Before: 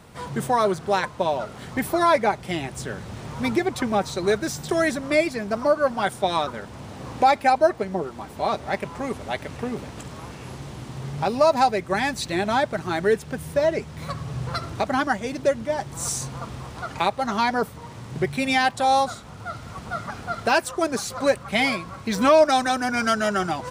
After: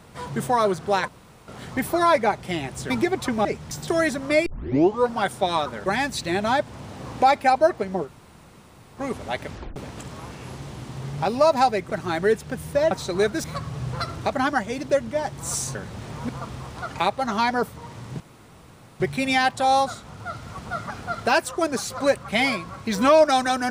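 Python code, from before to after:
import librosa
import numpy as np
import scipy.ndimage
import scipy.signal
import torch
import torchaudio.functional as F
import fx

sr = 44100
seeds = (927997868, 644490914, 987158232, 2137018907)

y = fx.edit(x, sr, fx.room_tone_fill(start_s=1.08, length_s=0.4),
    fx.move(start_s=2.9, length_s=0.54, to_s=16.29),
    fx.swap(start_s=3.99, length_s=0.53, other_s=13.72, other_length_s=0.26),
    fx.tape_start(start_s=5.27, length_s=0.65),
    fx.room_tone_fill(start_s=8.06, length_s=0.93, crossfade_s=0.06),
    fx.tape_stop(start_s=9.49, length_s=0.27),
    fx.move(start_s=11.9, length_s=0.81, to_s=6.67),
    fx.insert_room_tone(at_s=18.2, length_s=0.8), tone=tone)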